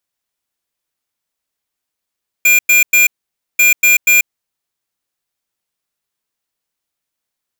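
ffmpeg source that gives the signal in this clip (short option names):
-f lavfi -i "aevalsrc='0.355*(2*lt(mod(2400*t,1),0.5)-1)*clip(min(mod(mod(t,1.14),0.24),0.14-mod(mod(t,1.14),0.24))/0.005,0,1)*lt(mod(t,1.14),0.72)':d=2.28:s=44100"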